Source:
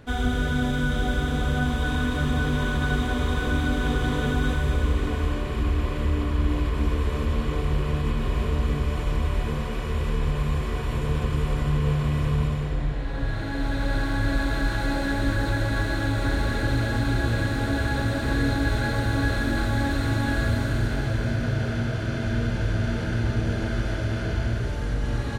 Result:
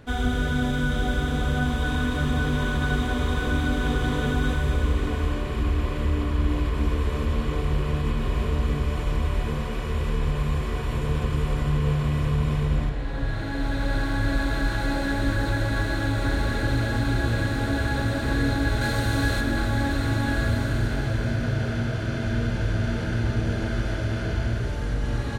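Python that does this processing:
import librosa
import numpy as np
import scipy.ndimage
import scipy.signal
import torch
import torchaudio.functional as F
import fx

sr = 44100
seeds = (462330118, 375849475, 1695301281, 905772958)

y = fx.echo_throw(x, sr, start_s=12.16, length_s=0.42, ms=310, feedback_pct=15, wet_db=-4.0)
y = fx.high_shelf(y, sr, hz=3500.0, db=7.0, at=(18.81, 19.41))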